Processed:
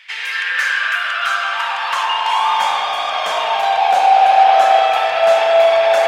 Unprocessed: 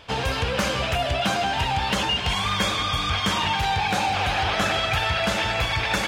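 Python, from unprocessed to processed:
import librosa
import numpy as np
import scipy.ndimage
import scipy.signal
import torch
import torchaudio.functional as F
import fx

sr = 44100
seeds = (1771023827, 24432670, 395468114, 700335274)

y = fx.rev_spring(x, sr, rt60_s=3.8, pass_ms=(36,), chirp_ms=70, drr_db=-0.5)
y = fx.filter_sweep_highpass(y, sr, from_hz=2000.0, to_hz=680.0, start_s=0.17, end_s=3.32, q=5.9)
y = F.gain(torch.from_numpy(y), -1.0).numpy()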